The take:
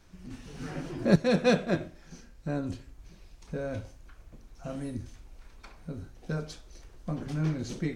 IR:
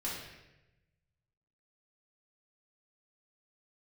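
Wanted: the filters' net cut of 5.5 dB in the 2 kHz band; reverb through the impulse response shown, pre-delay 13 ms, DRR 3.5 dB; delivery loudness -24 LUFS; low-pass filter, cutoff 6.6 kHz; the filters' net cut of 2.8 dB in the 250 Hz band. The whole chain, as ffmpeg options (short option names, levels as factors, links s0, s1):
-filter_complex "[0:a]lowpass=6600,equalizer=f=250:t=o:g=-4,equalizer=f=2000:t=o:g=-7.5,asplit=2[s0][s1];[1:a]atrim=start_sample=2205,adelay=13[s2];[s1][s2]afir=irnorm=-1:irlink=0,volume=0.473[s3];[s0][s3]amix=inputs=2:normalize=0,volume=2.24"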